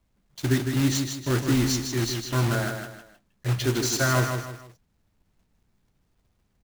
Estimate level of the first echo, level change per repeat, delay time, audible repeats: -6.0 dB, -9.0 dB, 0.156 s, 3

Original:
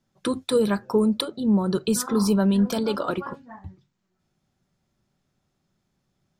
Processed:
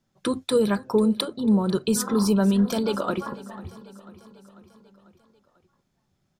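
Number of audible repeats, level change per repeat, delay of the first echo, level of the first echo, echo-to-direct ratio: 4, -4.5 dB, 0.494 s, -19.0 dB, -17.0 dB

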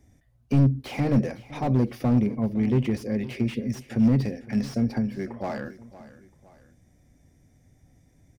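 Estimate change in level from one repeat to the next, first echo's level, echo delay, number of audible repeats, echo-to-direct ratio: -7.5 dB, -17.0 dB, 0.511 s, 2, -16.5 dB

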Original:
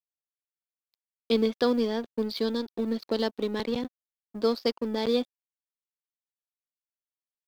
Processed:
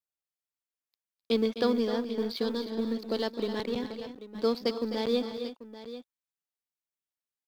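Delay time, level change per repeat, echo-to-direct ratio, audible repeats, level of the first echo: 0.257 s, no steady repeat, -7.5 dB, 3, -11.0 dB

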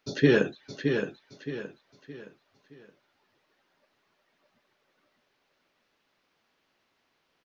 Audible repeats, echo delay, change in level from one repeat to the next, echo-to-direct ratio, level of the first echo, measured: 4, 0.619 s, -8.5 dB, -6.0 dB, -6.5 dB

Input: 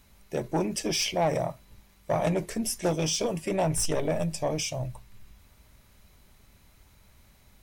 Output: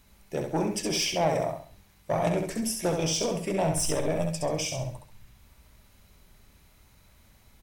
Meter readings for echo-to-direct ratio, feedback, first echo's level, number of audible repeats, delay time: -4.5 dB, 34%, -5.0 dB, 4, 67 ms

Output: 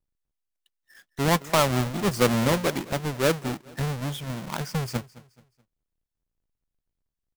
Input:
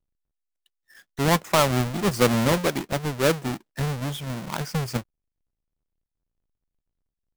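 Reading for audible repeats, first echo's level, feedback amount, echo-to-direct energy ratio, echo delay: 2, -20.0 dB, 37%, -19.5 dB, 0.214 s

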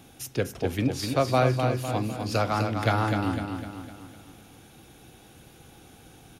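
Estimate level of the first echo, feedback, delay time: -6.0 dB, 48%, 0.252 s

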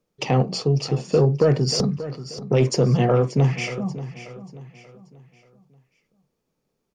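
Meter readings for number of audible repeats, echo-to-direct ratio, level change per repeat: 3, -13.5 dB, -8.5 dB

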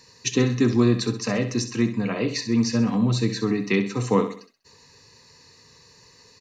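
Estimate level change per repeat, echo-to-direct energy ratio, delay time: -8.0 dB, -10.0 dB, 65 ms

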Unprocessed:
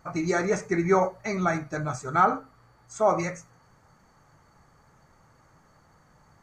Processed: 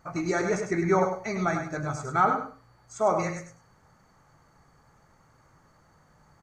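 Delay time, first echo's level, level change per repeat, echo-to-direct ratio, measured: 0.101 s, -7.0 dB, -13.5 dB, -7.0 dB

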